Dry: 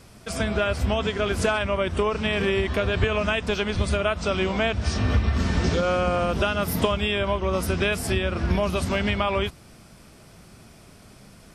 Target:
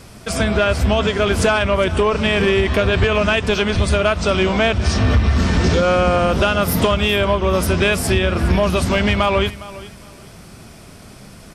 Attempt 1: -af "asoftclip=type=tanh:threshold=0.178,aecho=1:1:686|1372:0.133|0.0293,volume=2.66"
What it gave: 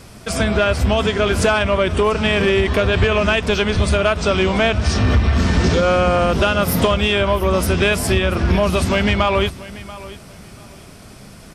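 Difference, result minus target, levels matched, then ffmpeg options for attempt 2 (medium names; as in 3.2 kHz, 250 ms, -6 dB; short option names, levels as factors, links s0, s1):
echo 276 ms late
-af "asoftclip=type=tanh:threshold=0.178,aecho=1:1:410|820:0.133|0.0293,volume=2.66"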